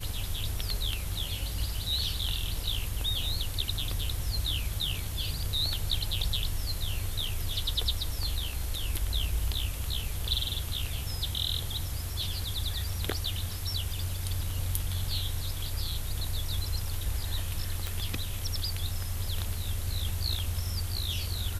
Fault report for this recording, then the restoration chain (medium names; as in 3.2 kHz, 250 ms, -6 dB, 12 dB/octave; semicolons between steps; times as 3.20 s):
17.87 s: pop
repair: de-click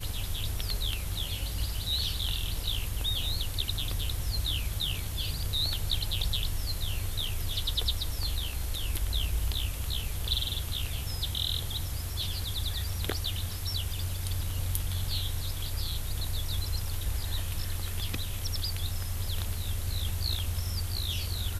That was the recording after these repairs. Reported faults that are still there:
nothing left